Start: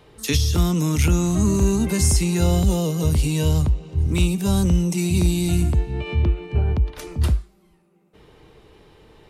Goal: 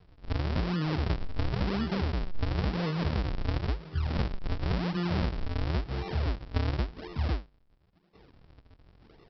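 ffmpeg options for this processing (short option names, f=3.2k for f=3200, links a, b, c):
-af "acompressor=threshold=-19dB:ratio=6,aresample=11025,acrusher=samples=35:mix=1:aa=0.000001:lfo=1:lforange=56:lforate=0.95,aresample=44100,volume=-6.5dB"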